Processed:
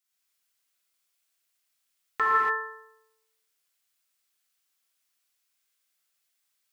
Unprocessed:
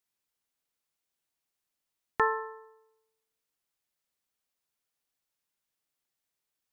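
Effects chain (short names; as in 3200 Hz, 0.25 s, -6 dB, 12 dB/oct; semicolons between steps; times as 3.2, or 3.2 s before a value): tilt shelf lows -7.5 dB, about 710 Hz; notch 910 Hz, Q 6.7; non-linear reverb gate 0.31 s flat, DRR -7.5 dB; gain -6 dB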